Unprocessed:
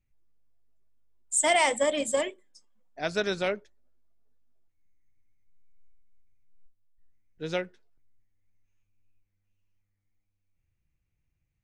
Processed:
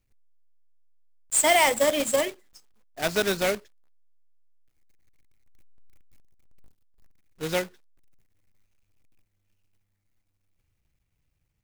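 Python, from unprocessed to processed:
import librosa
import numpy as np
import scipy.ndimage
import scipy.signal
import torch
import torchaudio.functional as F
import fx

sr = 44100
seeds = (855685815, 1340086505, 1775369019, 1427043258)

y = fx.block_float(x, sr, bits=3)
y = y * 10.0 ** (3.0 / 20.0)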